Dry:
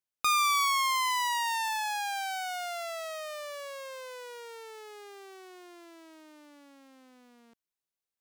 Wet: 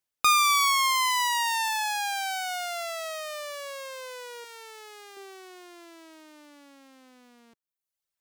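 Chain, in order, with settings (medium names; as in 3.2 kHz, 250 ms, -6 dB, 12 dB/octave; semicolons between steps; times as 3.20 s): 4.44–5.17 s: bass shelf 350 Hz -11 dB; reverb removal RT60 0.86 s; trim +6 dB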